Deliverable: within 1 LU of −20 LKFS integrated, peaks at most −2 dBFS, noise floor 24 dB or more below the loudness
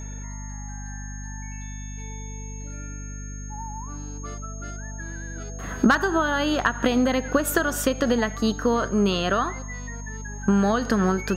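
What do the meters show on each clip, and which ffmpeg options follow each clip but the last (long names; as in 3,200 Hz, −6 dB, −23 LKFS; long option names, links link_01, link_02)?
mains hum 50 Hz; hum harmonics up to 250 Hz; level of the hum −32 dBFS; interfering tone 6,500 Hz; level of the tone −42 dBFS; integrated loudness −24.5 LKFS; sample peak −7.0 dBFS; target loudness −20.0 LKFS
→ -af "bandreject=frequency=50:width_type=h:width=4,bandreject=frequency=100:width_type=h:width=4,bandreject=frequency=150:width_type=h:width=4,bandreject=frequency=200:width_type=h:width=4,bandreject=frequency=250:width_type=h:width=4"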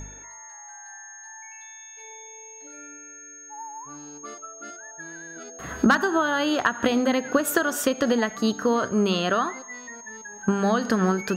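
mains hum none found; interfering tone 6,500 Hz; level of the tone −42 dBFS
→ -af "bandreject=frequency=6500:width=30"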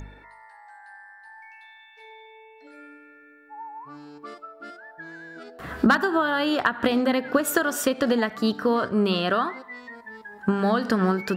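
interfering tone none found; integrated loudness −23.0 LKFS; sample peak −6.5 dBFS; target loudness −20.0 LKFS
→ -af "volume=3dB"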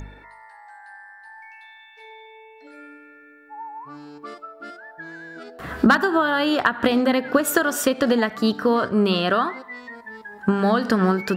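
integrated loudness −20.0 LKFS; sample peak −3.5 dBFS; background noise floor −48 dBFS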